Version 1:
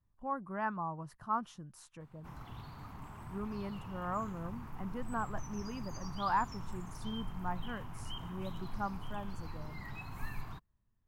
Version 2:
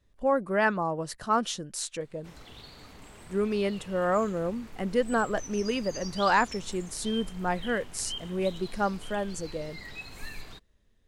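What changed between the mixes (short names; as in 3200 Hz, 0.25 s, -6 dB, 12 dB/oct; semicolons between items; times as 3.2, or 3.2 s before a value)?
speech +11.5 dB; master: add graphic EQ 125/500/1000/2000/4000/8000 Hz -9/+11/-10/+5/+11/+11 dB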